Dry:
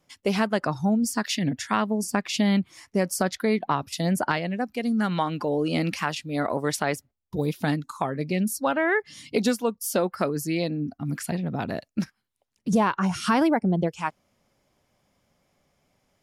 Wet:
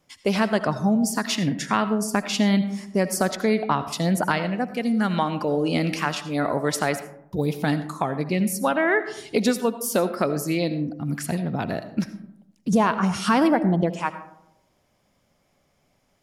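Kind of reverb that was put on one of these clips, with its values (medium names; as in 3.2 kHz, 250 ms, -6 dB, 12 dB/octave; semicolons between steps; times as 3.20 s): algorithmic reverb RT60 0.83 s, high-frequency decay 0.35×, pre-delay 40 ms, DRR 11.5 dB; trim +2 dB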